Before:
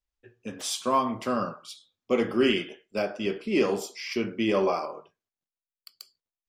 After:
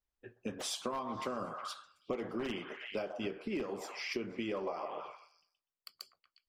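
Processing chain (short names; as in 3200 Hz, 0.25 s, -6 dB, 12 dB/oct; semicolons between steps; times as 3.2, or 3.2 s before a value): one-sided fold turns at -16.5 dBFS; high shelf 2800 Hz -9.5 dB; on a send: delay with a stepping band-pass 0.123 s, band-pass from 850 Hz, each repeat 0.7 oct, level -7 dB; on the sum: harmonic-percussive split percussive +9 dB; compressor 10:1, threshold -30 dBFS, peak gain reduction 16.5 dB; gain -4.5 dB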